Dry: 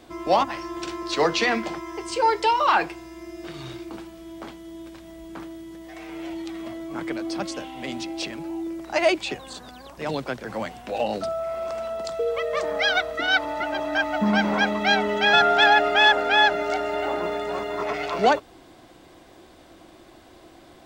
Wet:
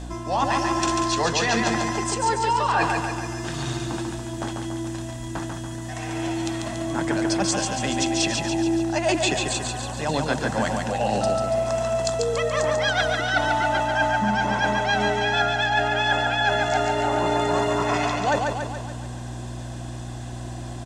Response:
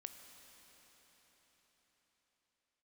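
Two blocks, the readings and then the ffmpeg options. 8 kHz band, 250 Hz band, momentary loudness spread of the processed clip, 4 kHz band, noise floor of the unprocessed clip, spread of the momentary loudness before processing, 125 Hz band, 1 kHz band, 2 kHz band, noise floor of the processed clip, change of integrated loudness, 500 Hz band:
+12.0 dB, +3.5 dB, 11 LU, -1.0 dB, -50 dBFS, 22 LU, +12.5 dB, +0.5 dB, -1.0 dB, -33 dBFS, -0.5 dB, +1.0 dB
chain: -filter_complex "[0:a]lowpass=f=8900:w=0.5412,lowpass=f=8900:w=1.3066,bandreject=f=2300:w=9.7,aecho=1:1:1.2:0.33,areverse,acompressor=threshold=0.0447:ratio=16,areverse,aexciter=amount=3.4:drive=4.1:freq=6100,aeval=exprs='val(0)+0.00891*(sin(2*PI*60*n/s)+sin(2*PI*2*60*n/s)/2+sin(2*PI*3*60*n/s)/3+sin(2*PI*4*60*n/s)/4+sin(2*PI*5*60*n/s)/5)':c=same,asplit=2[s0][s1];[s1]aecho=0:1:142|284|426|568|710|852|994|1136:0.631|0.36|0.205|0.117|0.0666|0.038|0.0216|0.0123[s2];[s0][s2]amix=inputs=2:normalize=0,volume=2.37" -ar 48000 -c:a libmp3lame -b:a 80k

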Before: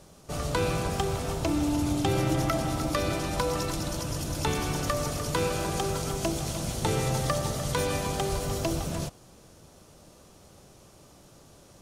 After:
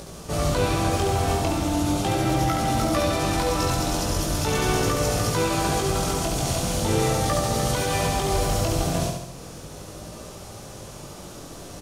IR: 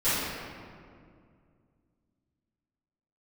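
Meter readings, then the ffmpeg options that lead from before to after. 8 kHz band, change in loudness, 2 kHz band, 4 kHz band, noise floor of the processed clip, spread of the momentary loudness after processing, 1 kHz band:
+6.5 dB, +5.5 dB, +5.5 dB, +6.0 dB, -40 dBFS, 17 LU, +7.0 dB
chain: -filter_complex "[0:a]asplit=2[s0][s1];[s1]acompressor=mode=upward:threshold=0.0282:ratio=2.5,volume=0.794[s2];[s0][s2]amix=inputs=2:normalize=0,alimiter=limit=0.178:level=0:latency=1:release=93,flanger=delay=17.5:depth=5.4:speed=0.39,aecho=1:1:70|140|210|280|350|420|490|560:0.596|0.334|0.187|0.105|0.0586|0.0328|0.0184|0.0103,volume=1.58"

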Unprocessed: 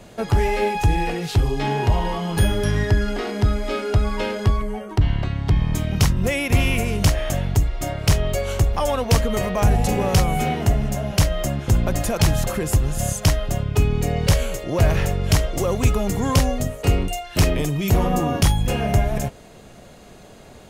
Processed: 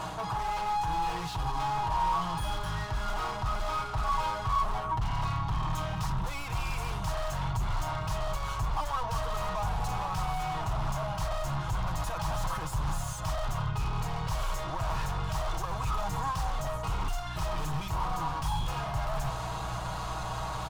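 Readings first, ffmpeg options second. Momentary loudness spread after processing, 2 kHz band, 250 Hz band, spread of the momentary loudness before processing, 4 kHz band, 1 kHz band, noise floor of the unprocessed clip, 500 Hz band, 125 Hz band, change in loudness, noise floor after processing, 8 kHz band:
4 LU, -11.0 dB, -17.5 dB, 4 LU, -11.0 dB, -2.5 dB, -44 dBFS, -15.0 dB, -14.0 dB, -11.5 dB, -36 dBFS, -14.5 dB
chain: -filter_complex "[0:a]areverse,acompressor=threshold=0.0398:ratio=16,areverse,aeval=exprs='val(0)+0.00794*(sin(2*PI*60*n/s)+sin(2*PI*2*60*n/s)/2+sin(2*PI*3*60*n/s)/3+sin(2*PI*4*60*n/s)/4+sin(2*PI*5*60*n/s)/5)':c=same,asplit=2[s0][s1];[s1]highpass=f=720:p=1,volume=44.7,asoftclip=type=tanh:threshold=0.106[s2];[s0][s2]amix=inputs=2:normalize=0,lowpass=f=2000:p=1,volume=0.501,asubboost=boost=4.5:cutoff=94,aecho=1:1:6.3:0.55,aeval=exprs='0.119*(abs(mod(val(0)/0.119+3,4)-2)-1)':c=same,equalizer=f=125:t=o:w=1:g=4,equalizer=f=250:t=o:w=1:g=-8,equalizer=f=500:t=o:w=1:g=-12,equalizer=f=1000:t=o:w=1:g=12,equalizer=f=2000:t=o:w=1:g=-10,volume=0.501"

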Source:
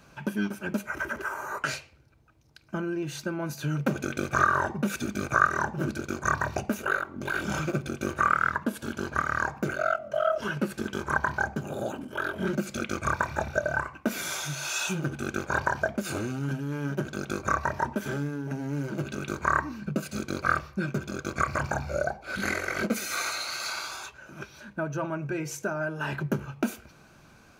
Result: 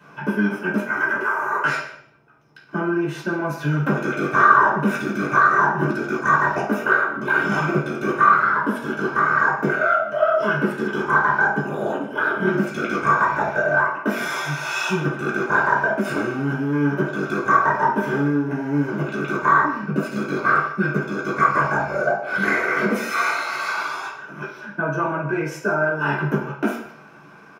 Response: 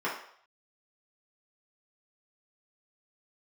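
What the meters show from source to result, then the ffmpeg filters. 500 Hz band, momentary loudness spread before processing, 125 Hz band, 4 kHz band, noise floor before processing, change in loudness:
+9.0 dB, 7 LU, +6.0 dB, +1.5 dB, -55 dBFS, +9.5 dB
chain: -filter_complex "[0:a]asplit=2[s0][s1];[s1]alimiter=limit=0.158:level=0:latency=1:release=33,volume=1.41[s2];[s0][s2]amix=inputs=2:normalize=0,asoftclip=type=tanh:threshold=0.501,asplit=2[s3][s4];[s4]adelay=151.6,volume=0.126,highshelf=f=4000:g=-3.41[s5];[s3][s5]amix=inputs=2:normalize=0[s6];[1:a]atrim=start_sample=2205[s7];[s6][s7]afir=irnorm=-1:irlink=0,volume=0.447"

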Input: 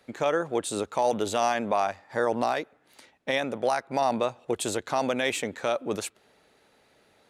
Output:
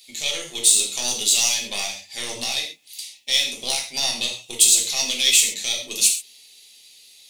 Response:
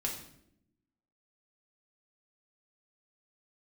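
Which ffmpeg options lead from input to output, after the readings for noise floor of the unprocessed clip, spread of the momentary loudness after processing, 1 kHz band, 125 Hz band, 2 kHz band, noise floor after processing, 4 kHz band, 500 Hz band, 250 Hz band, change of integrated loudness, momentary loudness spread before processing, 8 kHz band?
-64 dBFS, 13 LU, -11.0 dB, -7.0 dB, +4.5 dB, -50 dBFS, +18.0 dB, -11.5 dB, -9.0 dB, +9.0 dB, 5 LU, +21.0 dB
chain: -filter_complex "[0:a]aeval=exprs='0.211*(cos(1*acos(clip(val(0)/0.211,-1,1)))-cos(1*PI/2))+0.0668*(cos(2*acos(clip(val(0)/0.211,-1,1)))-cos(2*PI/2))':c=same,aexciter=amount=14.8:drive=10:freq=2500[s0];[1:a]atrim=start_sample=2205,afade=t=out:st=0.19:d=0.01,atrim=end_sample=8820[s1];[s0][s1]afir=irnorm=-1:irlink=0,volume=0.211"

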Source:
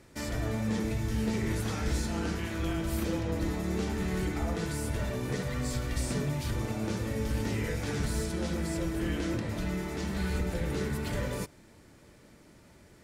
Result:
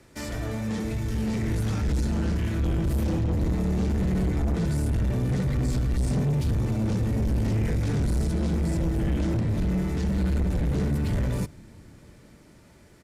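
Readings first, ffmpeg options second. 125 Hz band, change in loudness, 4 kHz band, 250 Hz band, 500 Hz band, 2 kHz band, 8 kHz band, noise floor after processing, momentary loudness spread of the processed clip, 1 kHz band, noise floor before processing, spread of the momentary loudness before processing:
+8.5 dB, +6.0 dB, -2.0 dB, +5.5 dB, +1.5 dB, -2.0 dB, -2.0 dB, -53 dBFS, 3 LU, +0.5 dB, -57 dBFS, 2 LU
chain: -filter_complex "[0:a]acrossover=split=230|990[s0][s1][s2];[s0]dynaudnorm=f=260:g=13:m=4.73[s3];[s3][s1][s2]amix=inputs=3:normalize=0,asoftclip=type=tanh:threshold=0.0708,aresample=32000,aresample=44100,volume=1.26"

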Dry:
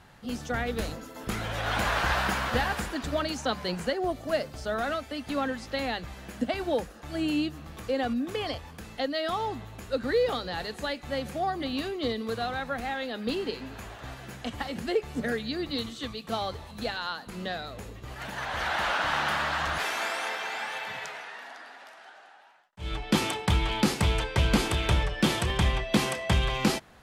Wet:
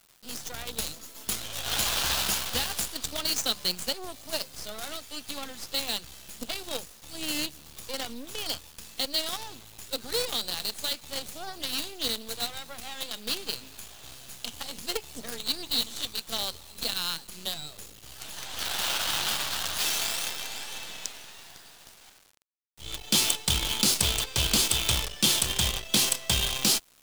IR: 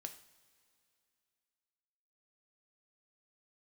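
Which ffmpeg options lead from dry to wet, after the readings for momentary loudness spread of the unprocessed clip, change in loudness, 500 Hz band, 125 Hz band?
12 LU, +1.5 dB, -9.0 dB, -7.5 dB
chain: -af "aexciter=amount=8.9:drive=1.9:freq=2800,acrusher=bits=4:dc=4:mix=0:aa=0.000001,volume=0.447"

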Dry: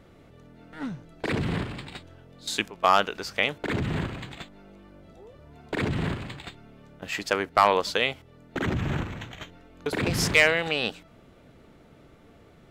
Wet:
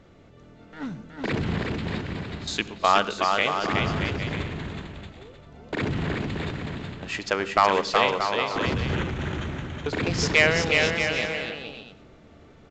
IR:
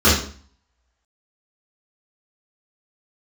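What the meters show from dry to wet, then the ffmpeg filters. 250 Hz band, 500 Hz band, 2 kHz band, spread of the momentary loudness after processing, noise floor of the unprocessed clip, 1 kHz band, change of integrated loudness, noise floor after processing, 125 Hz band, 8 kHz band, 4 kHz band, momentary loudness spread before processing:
+2.5 dB, +2.5 dB, +2.0 dB, 15 LU, -54 dBFS, +2.5 dB, +1.0 dB, -51 dBFS, +2.5 dB, +0.5 dB, +2.5 dB, 20 LU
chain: -filter_complex "[0:a]aecho=1:1:370|629|810.3|937.2|1026:0.631|0.398|0.251|0.158|0.1,asplit=2[s0][s1];[1:a]atrim=start_sample=2205,adelay=62[s2];[s1][s2]afir=irnorm=-1:irlink=0,volume=0.00891[s3];[s0][s3]amix=inputs=2:normalize=0" -ar 16000 -c:a pcm_mulaw

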